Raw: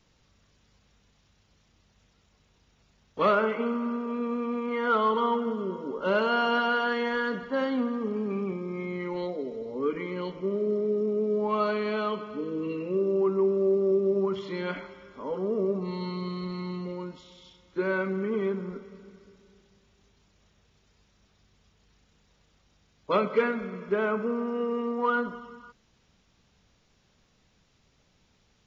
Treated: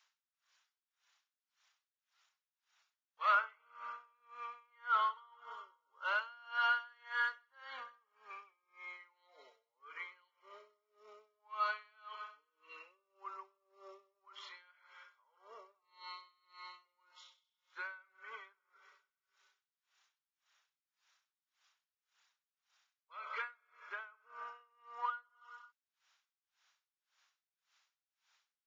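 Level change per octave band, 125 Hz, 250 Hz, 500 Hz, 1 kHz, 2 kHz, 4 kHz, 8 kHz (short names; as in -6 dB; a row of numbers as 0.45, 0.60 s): under -40 dB, under -40 dB, -30.5 dB, -9.0 dB, -7.0 dB, -10.5 dB, n/a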